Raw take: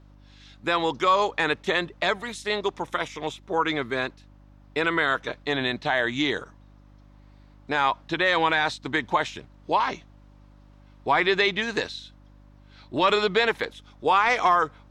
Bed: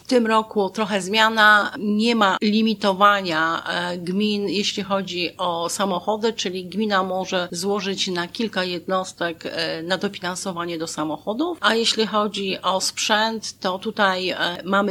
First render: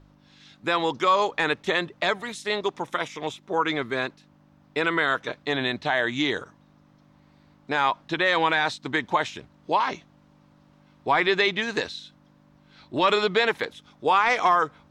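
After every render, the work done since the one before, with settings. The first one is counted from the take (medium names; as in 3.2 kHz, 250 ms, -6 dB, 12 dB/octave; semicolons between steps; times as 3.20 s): de-hum 50 Hz, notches 2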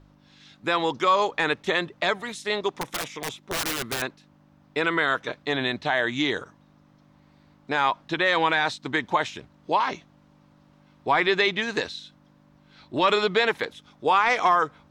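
2.81–4.02 s: integer overflow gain 22 dB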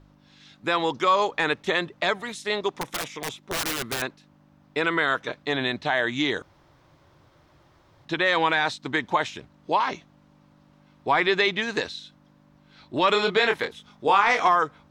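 6.42–8.05 s: room tone; 13.12–14.48 s: doubling 25 ms -5.5 dB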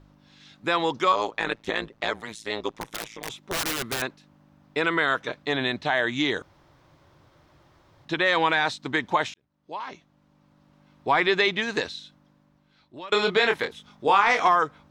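1.12–3.30 s: AM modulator 110 Hz, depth 85%; 9.34–11.09 s: fade in; 11.85–13.12 s: fade out, to -23 dB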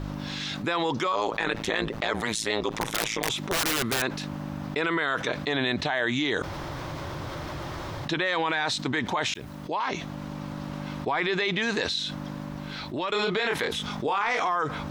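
peak limiter -19 dBFS, peak gain reduction 11.5 dB; level flattener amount 70%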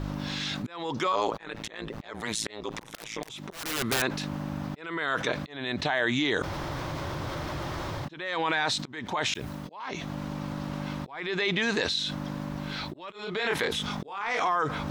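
reverse; upward compressor, threshold -29 dBFS; reverse; slow attack 411 ms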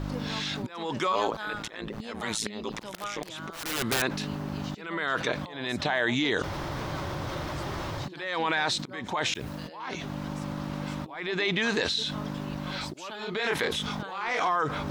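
add bed -23 dB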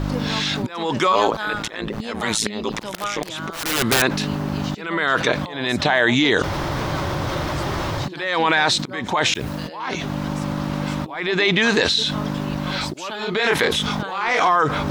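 trim +9.5 dB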